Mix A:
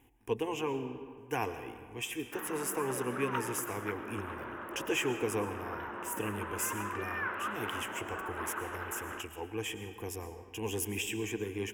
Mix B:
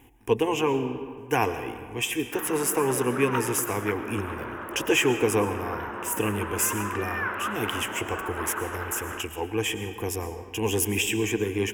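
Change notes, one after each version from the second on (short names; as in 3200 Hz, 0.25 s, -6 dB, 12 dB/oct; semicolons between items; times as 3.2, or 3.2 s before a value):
speech +10.0 dB; background +6.0 dB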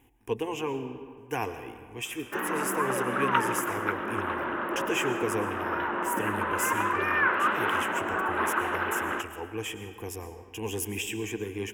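speech -7.5 dB; background +5.5 dB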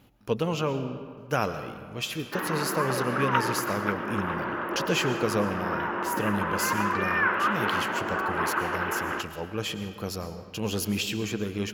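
speech: remove fixed phaser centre 880 Hz, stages 8; master: add bell 8400 Hz -14 dB 0.21 oct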